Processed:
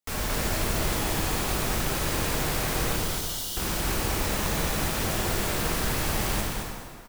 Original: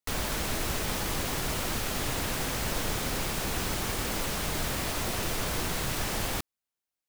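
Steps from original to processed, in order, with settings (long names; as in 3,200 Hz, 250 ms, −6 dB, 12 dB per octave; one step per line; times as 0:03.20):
phase distortion by the signal itself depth 0.37 ms
0:02.96–0:03.57: linear-phase brick-wall high-pass 2,800 Hz
on a send: single-tap delay 221 ms −6 dB
on the sum: dense smooth reverb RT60 2 s, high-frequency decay 0.8×, DRR −1.5 dB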